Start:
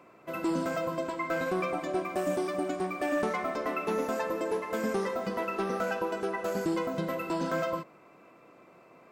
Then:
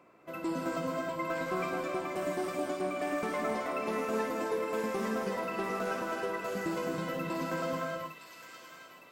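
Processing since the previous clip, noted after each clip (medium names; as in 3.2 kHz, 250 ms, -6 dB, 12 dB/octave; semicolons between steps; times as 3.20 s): feedback echo behind a high-pass 911 ms, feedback 50%, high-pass 2.1 kHz, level -5 dB; gated-style reverb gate 330 ms rising, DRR 0.5 dB; trim -5 dB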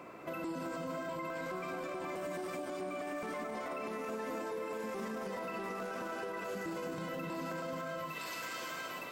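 compression, threshold -42 dBFS, peak gain reduction 13.5 dB; peak limiter -43 dBFS, peak gain reduction 10.5 dB; trim +11 dB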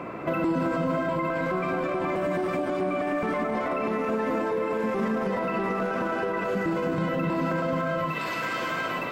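tone controls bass +5 dB, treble -14 dB; in parallel at +3 dB: gain riding 2 s; on the sum: trim +4.5 dB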